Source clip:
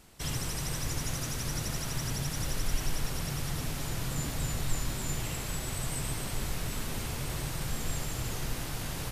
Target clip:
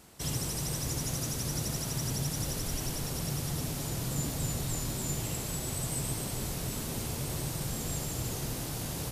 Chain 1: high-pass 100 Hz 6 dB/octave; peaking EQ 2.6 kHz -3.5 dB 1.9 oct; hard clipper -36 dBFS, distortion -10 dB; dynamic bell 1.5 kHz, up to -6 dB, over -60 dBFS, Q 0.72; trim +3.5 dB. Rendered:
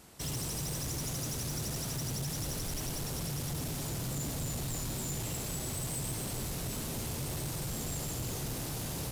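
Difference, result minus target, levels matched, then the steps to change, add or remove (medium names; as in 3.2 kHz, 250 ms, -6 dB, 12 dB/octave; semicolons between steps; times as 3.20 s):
hard clipper: distortion +31 dB
change: hard clipper -25.5 dBFS, distortion -41 dB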